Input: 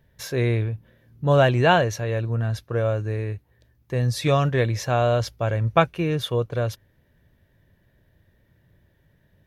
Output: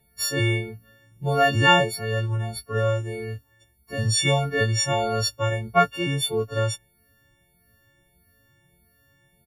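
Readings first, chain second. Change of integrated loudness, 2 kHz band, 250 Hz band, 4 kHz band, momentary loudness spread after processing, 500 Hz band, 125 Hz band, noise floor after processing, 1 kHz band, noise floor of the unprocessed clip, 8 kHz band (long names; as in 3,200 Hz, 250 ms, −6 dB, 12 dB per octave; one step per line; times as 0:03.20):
0.0 dB, +3.5 dB, −2.5 dB, +6.5 dB, 14 LU, −3.0 dB, −3.0 dB, −64 dBFS, +1.0 dB, −64 dBFS, +9.0 dB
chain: every partial snapped to a pitch grid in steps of 4 semitones
barber-pole flanger 2.7 ms +1.6 Hz
level +1 dB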